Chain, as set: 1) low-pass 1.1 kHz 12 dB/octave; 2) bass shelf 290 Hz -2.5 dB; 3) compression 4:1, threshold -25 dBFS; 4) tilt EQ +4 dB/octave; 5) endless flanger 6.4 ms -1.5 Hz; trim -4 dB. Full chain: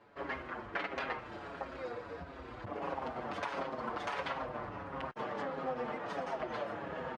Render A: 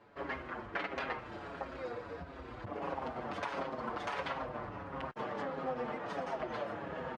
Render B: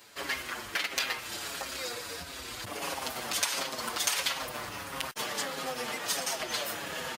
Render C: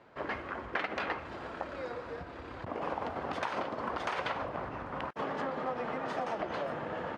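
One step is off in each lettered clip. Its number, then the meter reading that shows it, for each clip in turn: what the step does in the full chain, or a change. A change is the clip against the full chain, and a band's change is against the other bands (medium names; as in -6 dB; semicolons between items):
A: 2, 125 Hz band +1.5 dB; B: 1, 8 kHz band +31.0 dB; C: 5, loudness change +3.0 LU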